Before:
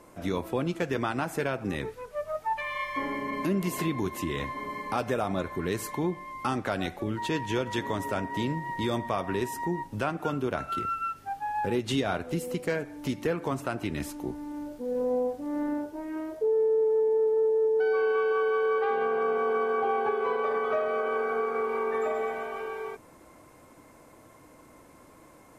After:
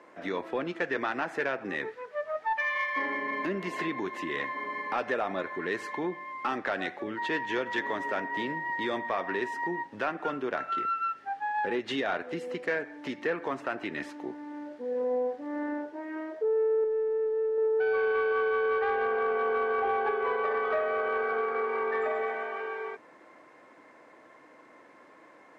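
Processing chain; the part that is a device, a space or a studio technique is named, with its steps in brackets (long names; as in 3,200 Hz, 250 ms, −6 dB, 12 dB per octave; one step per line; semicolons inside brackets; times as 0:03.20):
intercom (band-pass filter 320–3,700 Hz; parametric band 1,800 Hz +9 dB 0.37 octaves; soft clipping −18 dBFS, distortion −24 dB)
0:16.84–0:17.58: parametric band 850 Hz −7.5 dB 1.4 octaves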